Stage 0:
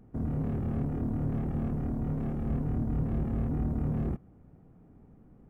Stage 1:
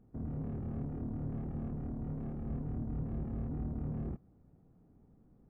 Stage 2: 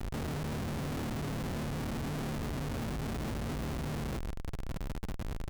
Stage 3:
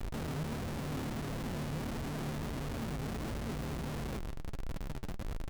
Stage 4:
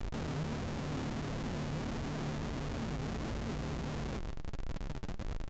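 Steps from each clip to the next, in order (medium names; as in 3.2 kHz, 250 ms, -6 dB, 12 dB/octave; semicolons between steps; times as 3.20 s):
treble shelf 2.1 kHz -9.5 dB; trim -7.5 dB
in parallel at +2 dB: peak limiter -39.5 dBFS, peak gain reduction 11.5 dB; on the sum: Schmitt trigger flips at -51.5 dBFS
flange 1.5 Hz, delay 1.4 ms, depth 6.7 ms, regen +67%; trim +2.5 dB
delay 138 ms -22 dB; resampled via 16 kHz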